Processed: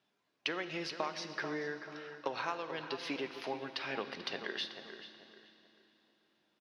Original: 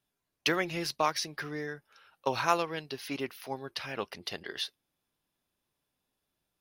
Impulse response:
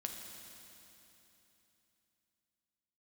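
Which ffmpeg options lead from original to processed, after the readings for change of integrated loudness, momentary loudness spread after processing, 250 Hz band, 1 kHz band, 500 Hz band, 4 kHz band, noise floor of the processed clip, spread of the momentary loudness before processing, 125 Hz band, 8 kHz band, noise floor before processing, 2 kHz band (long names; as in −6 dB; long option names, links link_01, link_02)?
−6.0 dB, 10 LU, −4.5 dB, −8.0 dB, −5.0 dB, −4.5 dB, −80 dBFS, 10 LU, −9.5 dB, −12.5 dB, −85 dBFS, −4.0 dB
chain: -filter_complex "[0:a]acompressor=threshold=-42dB:ratio=6,highpass=210,lowpass=5300,asplit=2[link_01][link_02];[link_02]adelay=437,lowpass=frequency=2200:poles=1,volume=-9dB,asplit=2[link_03][link_04];[link_04]adelay=437,lowpass=frequency=2200:poles=1,volume=0.33,asplit=2[link_05][link_06];[link_06]adelay=437,lowpass=frequency=2200:poles=1,volume=0.33,asplit=2[link_07][link_08];[link_08]adelay=437,lowpass=frequency=2200:poles=1,volume=0.33[link_09];[link_01][link_03][link_05][link_07][link_09]amix=inputs=5:normalize=0,asplit=2[link_10][link_11];[1:a]atrim=start_sample=2205,lowpass=6800[link_12];[link_11][link_12]afir=irnorm=-1:irlink=0,volume=0dB[link_13];[link_10][link_13]amix=inputs=2:normalize=0,volume=2.5dB"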